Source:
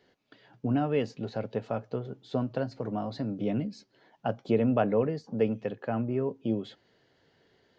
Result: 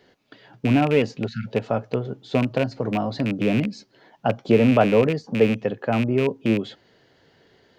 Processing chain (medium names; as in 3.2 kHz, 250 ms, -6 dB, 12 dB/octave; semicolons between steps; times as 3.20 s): rattle on loud lows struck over -31 dBFS, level -27 dBFS; spectral selection erased 1.27–1.47 s, 240–1300 Hz; trim +8.5 dB